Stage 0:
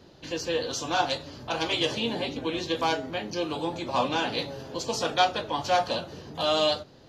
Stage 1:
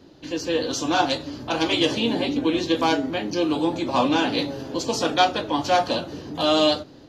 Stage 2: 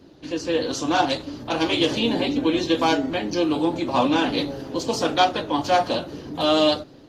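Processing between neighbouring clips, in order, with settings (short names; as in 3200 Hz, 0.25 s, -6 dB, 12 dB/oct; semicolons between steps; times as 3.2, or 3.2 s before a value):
bell 290 Hz +10 dB 0.46 oct; AGC gain up to 4 dB
gain +1 dB; Opus 24 kbps 48000 Hz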